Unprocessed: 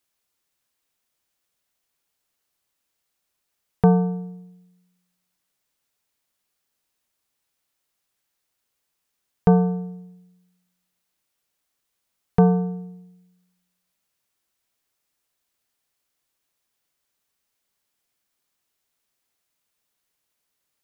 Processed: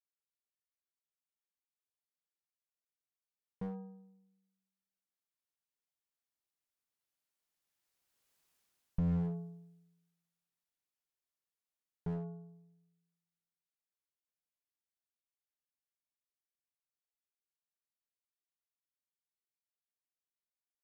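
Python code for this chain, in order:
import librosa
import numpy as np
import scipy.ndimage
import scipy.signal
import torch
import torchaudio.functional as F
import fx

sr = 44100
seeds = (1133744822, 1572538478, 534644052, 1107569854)

y = fx.doppler_pass(x, sr, speed_mps=20, closest_m=6.1, pass_at_s=8.45)
y = fx.slew_limit(y, sr, full_power_hz=5.4)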